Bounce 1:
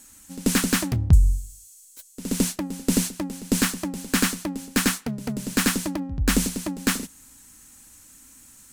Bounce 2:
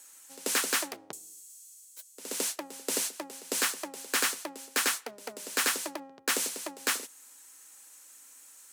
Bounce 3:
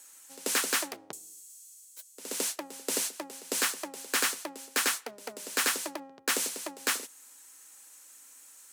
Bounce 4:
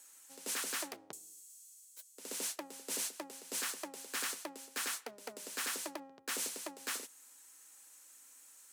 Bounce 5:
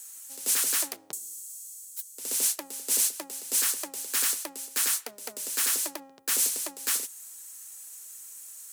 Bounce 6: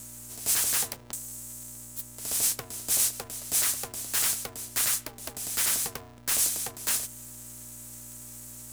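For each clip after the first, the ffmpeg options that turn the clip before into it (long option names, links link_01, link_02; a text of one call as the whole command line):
ffmpeg -i in.wav -af "highpass=frequency=420:width=0.5412,highpass=frequency=420:width=1.3066,volume=-3dB" out.wav
ffmpeg -i in.wav -af anull out.wav
ffmpeg -i in.wav -af "alimiter=limit=-21.5dB:level=0:latency=1:release=31,volume=-5.5dB" out.wav
ffmpeg -i in.wav -af "crystalizer=i=2.5:c=0,volume=3dB" out.wav
ffmpeg -i in.wav -af "aeval=exprs='val(0)+0.00316*(sin(2*PI*60*n/s)+sin(2*PI*2*60*n/s)/2+sin(2*PI*3*60*n/s)/3+sin(2*PI*4*60*n/s)/4+sin(2*PI*5*60*n/s)/5)':channel_layout=same,aeval=exprs='val(0)*sgn(sin(2*PI*180*n/s))':channel_layout=same" out.wav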